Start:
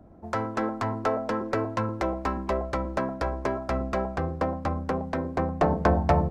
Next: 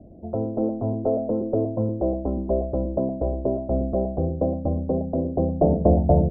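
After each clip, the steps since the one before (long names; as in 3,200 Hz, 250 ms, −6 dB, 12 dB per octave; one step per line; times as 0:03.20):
elliptic low-pass filter 650 Hz, stop band 80 dB
level +6 dB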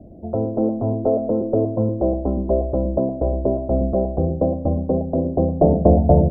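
four-comb reverb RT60 1 s, combs from 32 ms, DRR 15.5 dB
level +4 dB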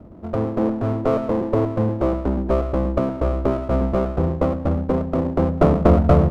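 windowed peak hold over 17 samples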